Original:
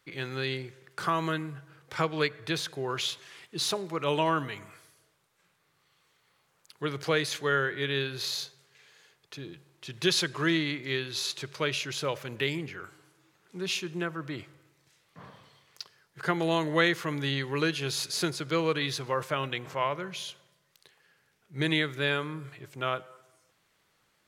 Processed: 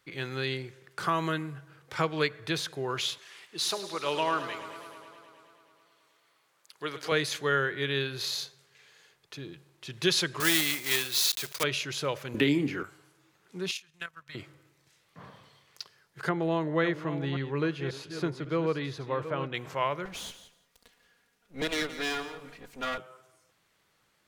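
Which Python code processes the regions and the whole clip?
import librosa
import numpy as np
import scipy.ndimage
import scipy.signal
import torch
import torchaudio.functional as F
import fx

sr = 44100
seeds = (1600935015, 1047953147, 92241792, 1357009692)

y = fx.chain(x, sr, fx.highpass(hz=510.0, slope=6),
    fx.echo_warbled(ms=106, feedback_pct=78, rate_hz=2.8, cents=70, wet_db=-13.0), at=(3.18, 7.12))
y = fx.chain(y, sr, fx.block_float(bits=3),
    fx.highpass(hz=54.0, slope=12),
    fx.tilt_eq(slope=2.5), at=(10.4, 11.64))
y = fx.chain(y, sr, fx.peak_eq(hz=270.0, db=14.5, octaves=0.7),
    fx.doubler(ms=28.0, db=-11),
    fx.band_squash(depth_pct=70), at=(12.34, 12.83))
y = fx.chain(y, sr, fx.tone_stack(knobs='10-0-10'),
    fx.transient(attack_db=8, sustain_db=-6),
    fx.level_steps(step_db=9), at=(13.71, 14.35))
y = fx.chain(y, sr, fx.reverse_delay(ms=539, wet_db=-11.0),
    fx.lowpass(hz=1000.0, slope=6), at=(16.29, 19.54))
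y = fx.chain(y, sr, fx.lower_of_two(delay_ms=4.2),
    fx.echo_feedback(ms=172, feedback_pct=15, wet_db=-13.5), at=(20.05, 22.98))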